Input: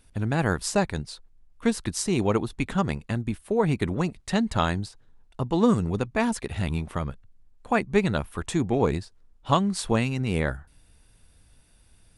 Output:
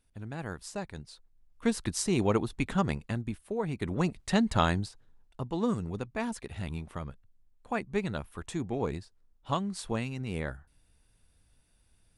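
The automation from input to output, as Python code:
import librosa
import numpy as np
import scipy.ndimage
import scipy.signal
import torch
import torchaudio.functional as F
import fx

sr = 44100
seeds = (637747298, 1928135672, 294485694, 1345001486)

y = fx.gain(x, sr, db=fx.line((0.8, -14.0), (1.79, -3.0), (2.93, -3.0), (3.72, -10.5), (4.05, -1.5), (4.75, -1.5), (5.58, -9.0)))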